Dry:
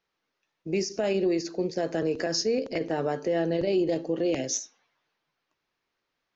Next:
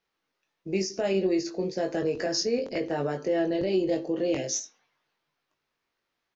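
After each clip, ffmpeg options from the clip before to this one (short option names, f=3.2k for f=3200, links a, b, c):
-filter_complex "[0:a]asplit=2[a][b];[b]adelay=21,volume=-5dB[c];[a][c]amix=inputs=2:normalize=0,volume=-1.5dB"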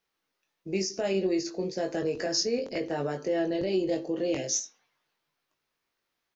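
-af "highshelf=f=6k:g=7,volume=-2dB"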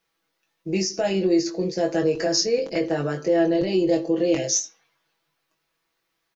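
-af "aecho=1:1:6.1:0.65,volume=4.5dB"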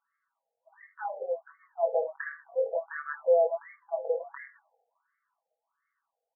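-af "afftfilt=real='re*between(b*sr/1024,590*pow(1600/590,0.5+0.5*sin(2*PI*1.4*pts/sr))/1.41,590*pow(1600/590,0.5+0.5*sin(2*PI*1.4*pts/sr))*1.41)':imag='im*between(b*sr/1024,590*pow(1600/590,0.5+0.5*sin(2*PI*1.4*pts/sr))/1.41,590*pow(1600/590,0.5+0.5*sin(2*PI*1.4*pts/sr))*1.41)':win_size=1024:overlap=0.75"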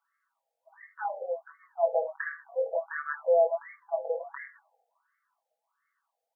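-af "highpass=f=540:w=0.5412,highpass=f=540:w=1.3066,volume=2.5dB"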